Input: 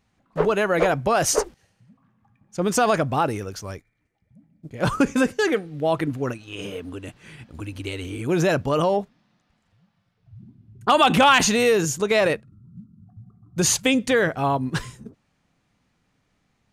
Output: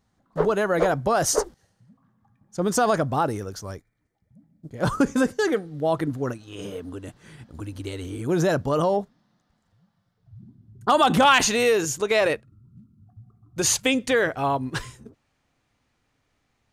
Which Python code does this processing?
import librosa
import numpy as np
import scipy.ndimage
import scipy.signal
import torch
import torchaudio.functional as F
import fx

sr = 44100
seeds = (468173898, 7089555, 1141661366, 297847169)

y = fx.peak_eq(x, sr, hz=fx.steps((0.0, 2500.0), (11.25, 180.0)), db=-9.5, octaves=0.58)
y = F.gain(torch.from_numpy(y), -1.0).numpy()